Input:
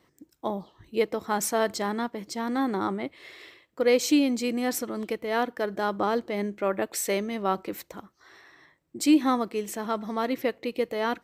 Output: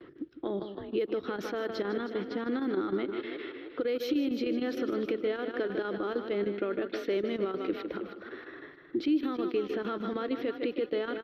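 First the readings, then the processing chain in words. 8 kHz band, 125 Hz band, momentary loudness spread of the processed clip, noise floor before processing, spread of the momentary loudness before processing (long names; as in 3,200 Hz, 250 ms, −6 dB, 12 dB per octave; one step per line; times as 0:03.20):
below −25 dB, can't be measured, 9 LU, −70 dBFS, 15 LU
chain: dynamic equaliser 4,700 Hz, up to −6 dB, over −45 dBFS, Q 0.82
square-wave tremolo 6.5 Hz, depth 65%, duty 85%
low-pass that shuts in the quiet parts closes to 1,800 Hz, open at −19.5 dBFS
downward compressor 4 to 1, threshold −29 dBFS, peak gain reduction 12 dB
on a send: echo with shifted repeats 314 ms, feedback 32%, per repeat +37 Hz, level −14 dB
on the sum: noise gate with hold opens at −60 dBFS
single-tap delay 152 ms −11.5 dB
brickwall limiter −26.5 dBFS, peak gain reduction 9 dB
drawn EQ curve 220 Hz 0 dB, 350 Hz +12 dB, 650 Hz −2 dB, 970 Hz −7 dB, 1,400 Hz +7 dB, 2,100 Hz 0 dB, 3,400 Hz +9 dB, 5,600 Hz −3 dB, 8,100 Hz −28 dB, 13,000 Hz +1 dB
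multiband upward and downward compressor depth 40%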